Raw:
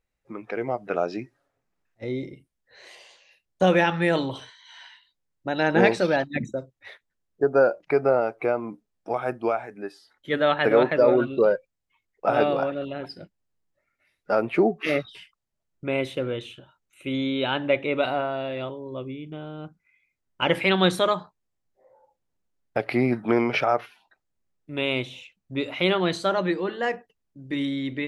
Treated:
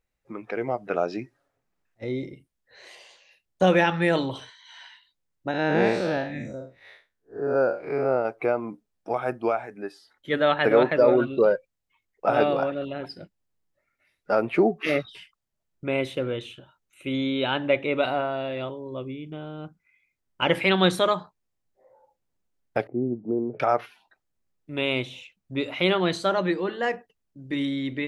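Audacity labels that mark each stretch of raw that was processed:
5.510000	8.250000	time blur width 0.142 s
22.870000	23.600000	ladder low-pass 510 Hz, resonance 30%

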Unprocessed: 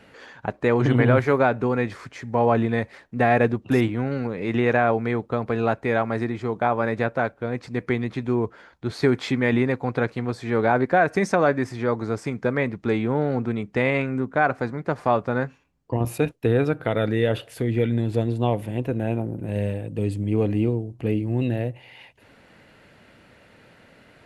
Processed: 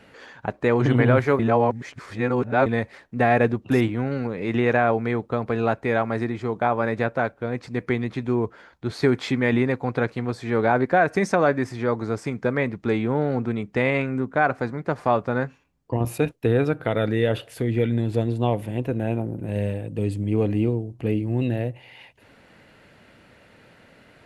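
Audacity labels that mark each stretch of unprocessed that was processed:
1.390000	2.660000	reverse

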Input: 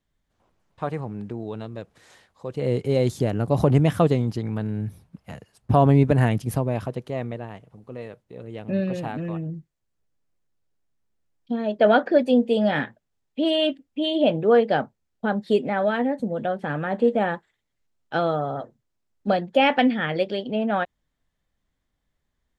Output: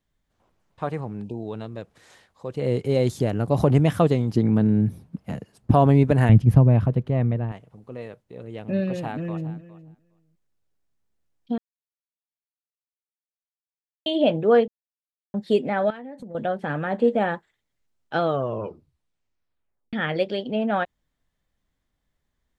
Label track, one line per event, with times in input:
1.240000	1.440000	spectral delete 970–2400 Hz
4.330000	5.710000	bell 230 Hz +10.5 dB 2.4 oct
6.290000	7.520000	tone controls bass +13 dB, treble -13 dB
8.960000	9.530000	echo throw 0.41 s, feedback 10%, level -16.5 dB
11.580000	14.060000	mute
14.680000	15.340000	mute
15.900000	16.350000	compressor 16:1, threshold -34 dBFS
18.230000	18.230000	tape stop 1.70 s

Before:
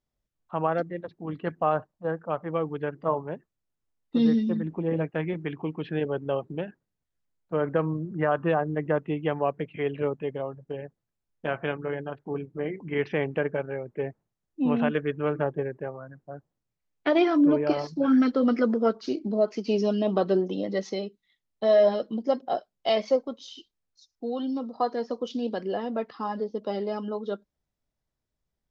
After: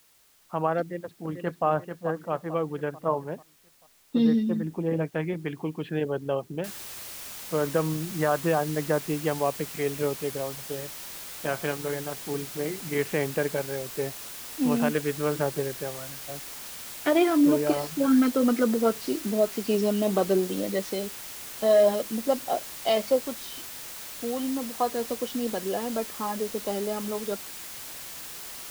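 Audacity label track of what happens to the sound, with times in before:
0.810000	1.660000	echo throw 0.44 s, feedback 45%, level -7.5 dB
6.640000	6.640000	noise floor step -61 dB -40 dB

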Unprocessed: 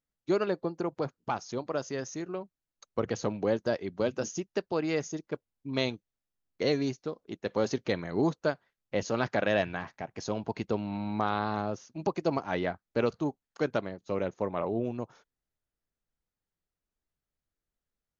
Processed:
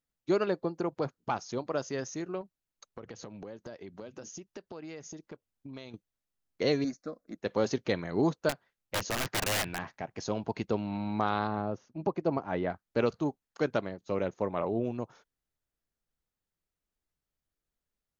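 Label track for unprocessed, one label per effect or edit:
2.410000	5.940000	compressor, threshold -41 dBFS
6.840000	7.380000	fixed phaser centre 600 Hz, stages 8
8.490000	9.790000	wrapped overs gain 24.5 dB
11.470000	12.700000	LPF 1200 Hz 6 dB/oct

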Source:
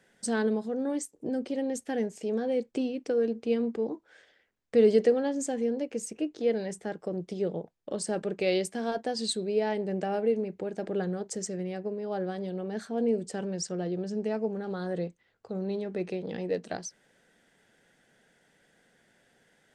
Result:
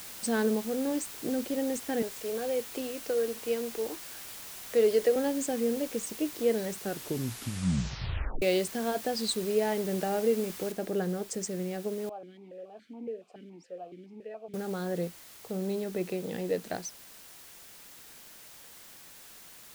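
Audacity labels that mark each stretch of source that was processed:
2.020000	5.160000	HPF 410 Hz
6.760000	6.760000	tape stop 1.66 s
10.720000	10.720000	noise floor step -44 dB -51 dB
12.090000	14.540000	vowel sequencer 7.1 Hz

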